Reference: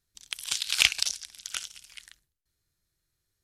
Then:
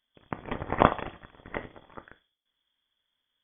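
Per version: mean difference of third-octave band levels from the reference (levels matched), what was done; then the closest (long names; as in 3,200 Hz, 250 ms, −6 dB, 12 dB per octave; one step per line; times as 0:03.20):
21.5 dB: high-pass filter 59 Hz
rectangular room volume 270 cubic metres, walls furnished, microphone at 0.54 metres
voice inversion scrambler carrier 3,400 Hz
level +3 dB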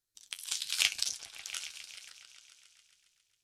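4.0 dB: bass and treble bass −8 dB, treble +4 dB
on a send: echo whose low-pass opens from repeat to repeat 136 ms, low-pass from 200 Hz, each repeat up 1 octave, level −3 dB
on the sum: flanger 0.86 Hz, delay 7.9 ms, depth 4.9 ms, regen +53%
level −4 dB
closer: second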